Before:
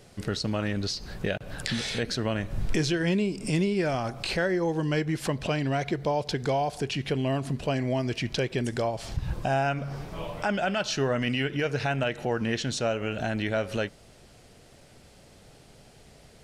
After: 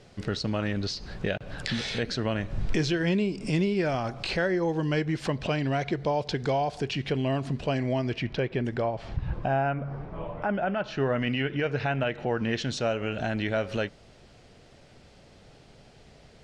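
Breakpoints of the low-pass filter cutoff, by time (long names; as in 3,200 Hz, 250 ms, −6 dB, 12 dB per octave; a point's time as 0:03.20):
0:07.91 5,600 Hz
0:08.36 2,500 Hz
0:09.34 2,500 Hz
0:09.84 1,500 Hz
0:10.74 1,500 Hz
0:11.15 3,200 Hz
0:12.21 3,200 Hz
0:12.64 5,500 Hz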